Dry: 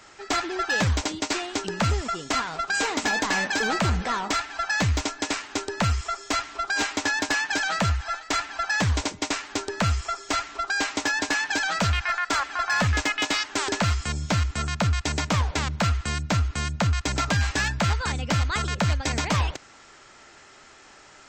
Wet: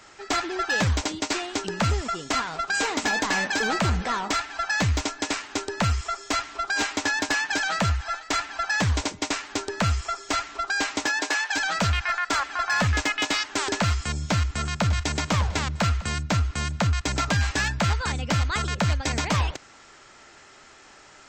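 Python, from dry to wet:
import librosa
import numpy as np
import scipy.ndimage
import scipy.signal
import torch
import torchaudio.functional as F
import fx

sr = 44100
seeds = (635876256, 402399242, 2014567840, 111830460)

y = fx.highpass(x, sr, hz=fx.line((11.06, 210.0), (11.55, 530.0)), slope=24, at=(11.06, 11.55), fade=0.02)
y = fx.echo_throw(y, sr, start_s=13.94, length_s=1.08, ms=600, feedback_pct=50, wet_db=-13.5)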